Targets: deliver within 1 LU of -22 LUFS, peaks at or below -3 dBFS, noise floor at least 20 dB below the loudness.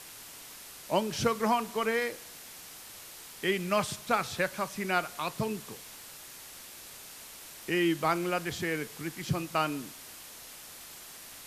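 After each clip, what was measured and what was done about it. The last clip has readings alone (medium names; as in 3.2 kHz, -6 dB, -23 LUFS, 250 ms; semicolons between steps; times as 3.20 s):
noise floor -48 dBFS; noise floor target -51 dBFS; loudness -31.0 LUFS; peak level -13.5 dBFS; loudness target -22.0 LUFS
-> noise reduction 6 dB, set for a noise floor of -48 dBFS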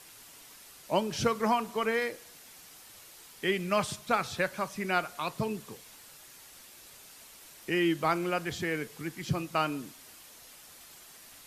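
noise floor -53 dBFS; loudness -31.0 LUFS; peak level -13.5 dBFS; loudness target -22.0 LUFS
-> trim +9 dB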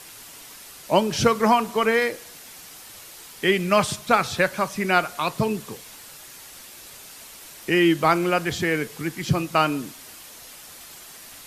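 loudness -22.0 LUFS; peak level -4.5 dBFS; noise floor -44 dBFS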